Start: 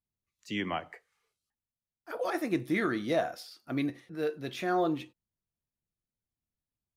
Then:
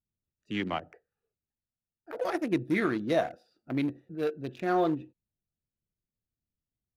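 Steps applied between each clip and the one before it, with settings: Wiener smoothing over 41 samples; gain +2.5 dB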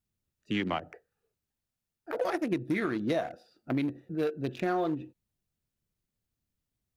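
compressor, threshold -32 dBFS, peak gain reduction 10.5 dB; gain +5.5 dB

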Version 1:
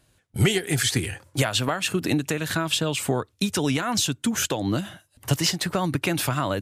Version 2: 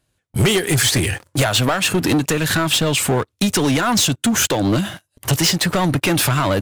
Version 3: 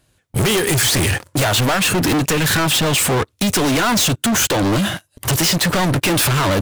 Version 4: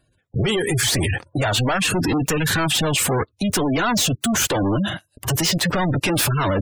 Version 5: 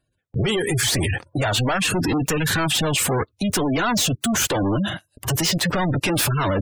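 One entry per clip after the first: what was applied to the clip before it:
sample leveller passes 3
hard clip -23.5 dBFS, distortion -8 dB; gain +8.5 dB
spectral gate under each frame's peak -20 dB strong; gain -3 dB
gate -55 dBFS, range -8 dB; gain -1 dB

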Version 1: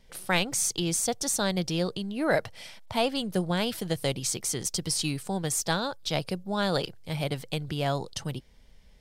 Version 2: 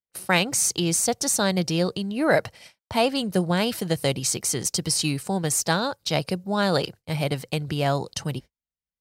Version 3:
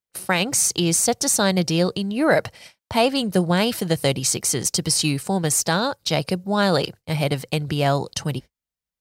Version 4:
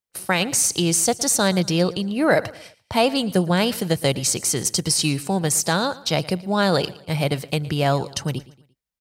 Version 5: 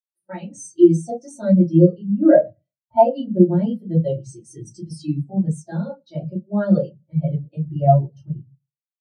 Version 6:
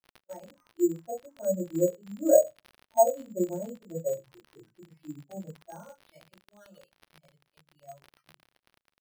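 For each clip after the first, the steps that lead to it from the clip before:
notch 3400 Hz, Q 10; gate -42 dBFS, range -44 dB; HPF 57 Hz; gain +5 dB
maximiser +10.5 dB; gain -7 dB
feedback echo 0.115 s, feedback 41%, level -19.5 dB
shoebox room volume 120 m³, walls furnished, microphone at 2.8 m; spectral expander 2.5:1; gain -3.5 dB
band-pass sweep 580 Hz -> 5900 Hz, 5.57–6.61; crackle 95/s -36 dBFS; careless resampling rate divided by 6×, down none, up hold; gain -5 dB

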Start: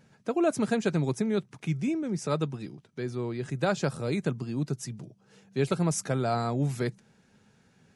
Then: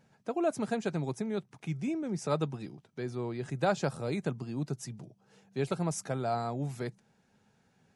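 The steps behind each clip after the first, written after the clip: bell 770 Hz +5.5 dB 0.76 oct; vocal rider 2 s; gain -6.5 dB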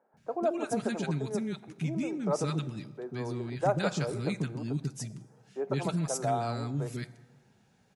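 three bands offset in time mids, lows, highs 0.14/0.17 s, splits 350/1300 Hz; plate-style reverb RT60 1.5 s, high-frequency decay 0.6×, DRR 16 dB; gain +3 dB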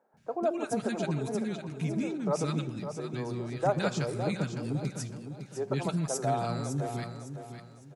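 feedback echo 0.557 s, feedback 32%, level -9 dB

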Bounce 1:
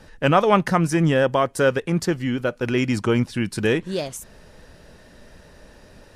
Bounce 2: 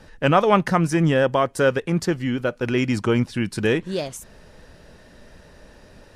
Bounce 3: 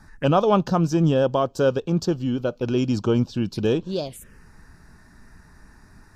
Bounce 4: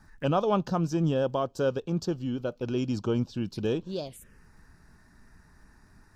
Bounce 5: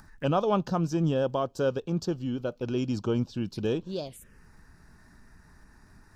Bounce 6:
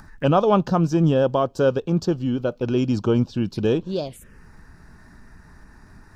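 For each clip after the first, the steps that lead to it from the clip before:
high shelf 8700 Hz -4 dB
envelope phaser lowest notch 480 Hz, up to 2000 Hz, full sweep at -21.5 dBFS
crackle 39/s -52 dBFS; gain -7 dB
upward compressor, threshold -49 dBFS
high shelf 4100 Hz -6 dB; gain +8 dB

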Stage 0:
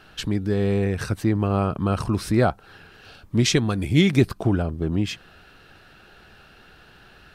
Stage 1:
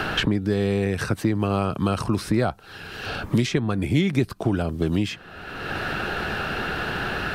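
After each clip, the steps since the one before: low shelf 61 Hz -9.5 dB; three-band squash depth 100%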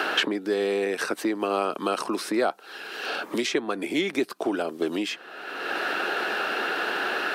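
HPF 310 Hz 24 dB/oct; gain +1 dB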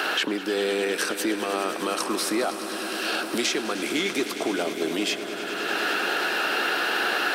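limiter -17.5 dBFS, peak gain reduction 7.5 dB; high shelf 3400 Hz +9.5 dB; swelling echo 0.102 s, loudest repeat 5, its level -14.5 dB

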